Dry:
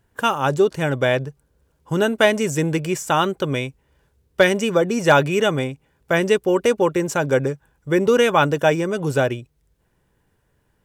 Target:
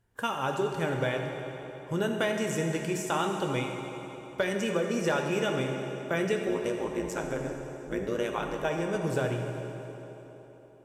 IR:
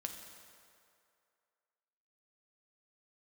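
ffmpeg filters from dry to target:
-filter_complex "[0:a]acompressor=threshold=-16dB:ratio=6,asettb=1/sr,asplit=3[a][b][c];[a]atrim=end=6.484[d];[b]atrim=start=6.48:end=8.65,asetpts=PTS-STARTPTS,afade=t=in:d=0.004:c=qsin,afade=t=out:st=2.166:d=0.004:c=qsin,tremolo=f=110:d=0.974[e];[c]atrim=start=8.646[f];[d][e]acrossfade=d=0.004:c1=hsin:c2=qsin[g];[g][f]acrossfade=d=0.004:c1=qsin:c2=hsin[h];[1:a]atrim=start_sample=2205,asetrate=26460,aresample=44100[i];[h][i]afir=irnorm=-1:irlink=0,volume=-8.5dB"

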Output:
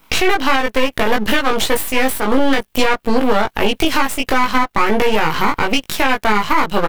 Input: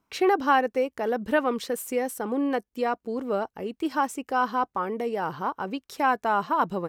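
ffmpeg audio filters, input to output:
-filter_complex "[0:a]crystalizer=i=8:c=0,acompressor=threshold=-30dB:ratio=6,highshelf=f=4.2k:t=q:w=1.5:g=-11,aeval=exprs='max(val(0),0)':c=same,asplit=2[a][b];[b]adelay=19,volume=-2.5dB[c];[a][c]amix=inputs=2:normalize=0,alimiter=level_in=22.5dB:limit=-1dB:release=50:level=0:latency=1,volume=-1dB"

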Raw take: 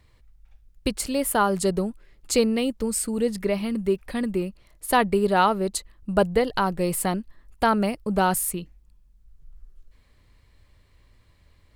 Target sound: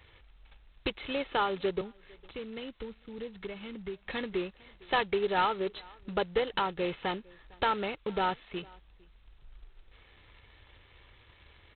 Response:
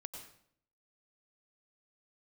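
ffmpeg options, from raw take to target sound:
-filter_complex "[0:a]equalizer=f=100:t=o:w=2.2:g=-3,acompressor=threshold=-40dB:ratio=2,highpass=f=70:p=1,highshelf=f=2.4k:g=10.5,aecho=1:1:2.3:0.5,asplit=2[a][b];[b]adelay=454.8,volume=-25dB,highshelf=f=4k:g=-10.2[c];[a][c]amix=inputs=2:normalize=0,asettb=1/sr,asplit=3[d][e][f];[d]atrim=end=1.814[g];[e]atrim=start=1.81:end=4.05,asetpts=PTS-STARTPTS,afade=t=in:d=0.004:c=qsin,afade=t=out:st=2.236:d=0.004:c=qsin,acrossover=split=220[h][i];[i]acompressor=threshold=-51dB:ratio=2[j];[h][j]amix=inputs=2:normalize=0[k];[f]atrim=start=4.046[l];[g][k]acrossfade=d=0.004:c1=hsin:c2=qsin[m];[m][l]acrossfade=d=0.004:c1=qsin:c2=hsin,volume=2dB" -ar 8000 -c:a adpcm_g726 -b:a 16k

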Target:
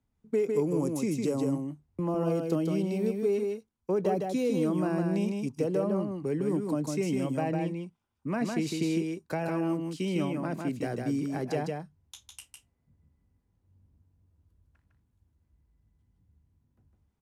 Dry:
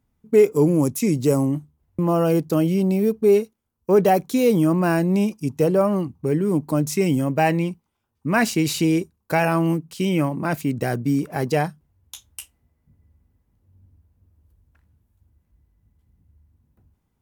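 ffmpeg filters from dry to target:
-filter_complex "[0:a]lowpass=9.2k,acrossover=split=150|610[a][b][c];[a]acompressor=threshold=-41dB:ratio=4[d];[b]acompressor=threshold=-19dB:ratio=4[e];[c]acompressor=threshold=-32dB:ratio=4[f];[d][e][f]amix=inputs=3:normalize=0,asplit=2[g][h];[h]aecho=0:1:155:0.631[i];[g][i]amix=inputs=2:normalize=0,volume=-7.5dB"

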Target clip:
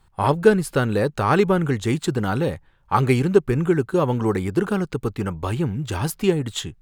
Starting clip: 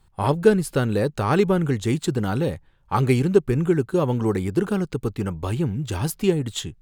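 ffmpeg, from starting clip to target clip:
-af "equalizer=f=1.3k:t=o:w=2.1:g=4.5"

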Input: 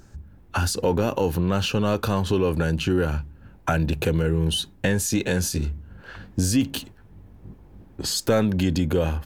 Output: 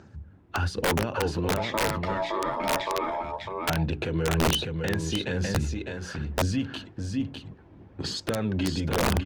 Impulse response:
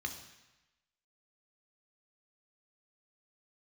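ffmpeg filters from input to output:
-filter_complex "[0:a]highpass=f=77:w=0.5412,highpass=f=77:w=1.3066,alimiter=limit=-17.5dB:level=0:latency=1:release=209,asettb=1/sr,asplit=3[a][b][c];[a]atrim=end=1.574[d];[b]atrim=start=1.57:end=3.24,asetpts=PTS-STARTPTS,afade=t=in:d=0.004:c=qsin,afade=t=out:st=1.666:d=0.004:c=qsin,aeval=exprs='val(0)*sin(2*PI*760*n/s)':c=same[e];[c]atrim=start=3.236[f];[d][e]acrossfade=d=0.004:c1=hsin:c2=qsin[g];[g][f]acrossfade=d=0.004:c1=qsin:c2=hsin,lowpass=3.8k,bandreject=f=60:t=h:w=6,bandreject=f=120:t=h:w=6,bandreject=f=180:t=h:w=6,bandreject=f=240:t=h:w=6,bandreject=f=300:t=h:w=6,bandreject=f=360:t=h:w=6,bandreject=f=420:t=h:w=6,aecho=1:1:603:0.562,aphaser=in_gain=1:out_gain=1:delay=3.1:decay=0.32:speed=1.1:type=sinusoidal,aeval=exprs='(mod(7.08*val(0)+1,2)-1)/7.08':c=same" -ar 48000 -c:a libopus -b:a 48k

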